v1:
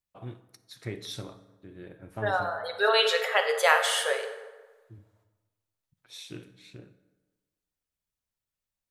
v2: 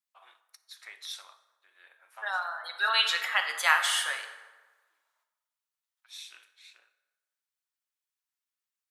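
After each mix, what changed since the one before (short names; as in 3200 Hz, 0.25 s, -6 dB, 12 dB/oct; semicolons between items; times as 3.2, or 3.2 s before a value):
second voice: remove brick-wall FIR high-pass 400 Hz; master: add inverse Chebyshev high-pass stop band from 160 Hz, stop band 80 dB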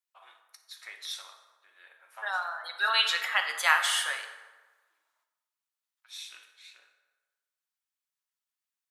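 first voice: send +8.5 dB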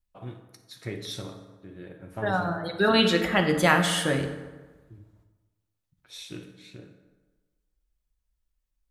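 master: remove inverse Chebyshev high-pass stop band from 160 Hz, stop band 80 dB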